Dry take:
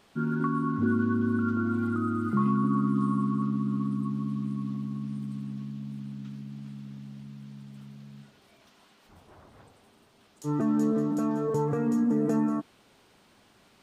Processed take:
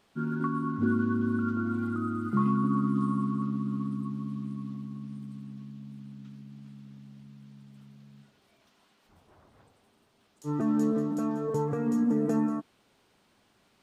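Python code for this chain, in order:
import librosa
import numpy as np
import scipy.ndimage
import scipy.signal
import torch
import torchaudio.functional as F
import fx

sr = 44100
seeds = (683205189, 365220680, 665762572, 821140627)

y = fx.upward_expand(x, sr, threshold_db=-35.0, expansion=1.5)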